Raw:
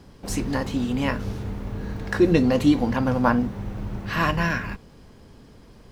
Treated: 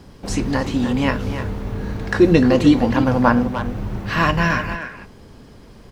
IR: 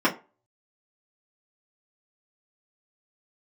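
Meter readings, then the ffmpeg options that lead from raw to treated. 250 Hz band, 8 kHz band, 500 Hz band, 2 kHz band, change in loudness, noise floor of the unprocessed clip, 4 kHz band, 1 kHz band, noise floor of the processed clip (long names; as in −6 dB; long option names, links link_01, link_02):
+5.0 dB, can't be measured, +5.5 dB, +5.5 dB, +5.0 dB, −49 dBFS, +5.0 dB, +5.5 dB, −44 dBFS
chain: -filter_complex "[0:a]asplit=2[link_01][link_02];[link_02]adelay=300,highpass=300,lowpass=3400,asoftclip=type=hard:threshold=-14.5dB,volume=-8dB[link_03];[link_01][link_03]amix=inputs=2:normalize=0,acrossover=split=8500[link_04][link_05];[link_05]acompressor=threshold=-59dB:ratio=4:attack=1:release=60[link_06];[link_04][link_06]amix=inputs=2:normalize=0,volume=5dB"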